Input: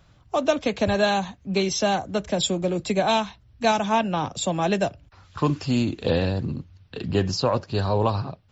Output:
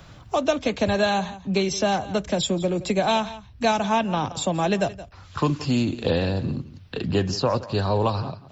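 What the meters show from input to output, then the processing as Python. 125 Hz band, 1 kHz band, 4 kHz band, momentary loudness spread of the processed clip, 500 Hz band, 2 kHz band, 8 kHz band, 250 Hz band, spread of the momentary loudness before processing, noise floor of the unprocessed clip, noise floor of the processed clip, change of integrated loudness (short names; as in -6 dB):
+0.5 dB, 0.0 dB, -0.5 dB, 7 LU, 0.0 dB, 0.0 dB, n/a, +0.5 dB, 7 LU, -56 dBFS, -47 dBFS, 0.0 dB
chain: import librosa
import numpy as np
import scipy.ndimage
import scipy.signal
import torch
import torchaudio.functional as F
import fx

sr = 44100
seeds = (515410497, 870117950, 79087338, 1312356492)

y = x + 10.0 ** (-18.0 / 20.0) * np.pad(x, (int(171 * sr / 1000.0), 0))[:len(x)]
y = fx.band_squash(y, sr, depth_pct=40)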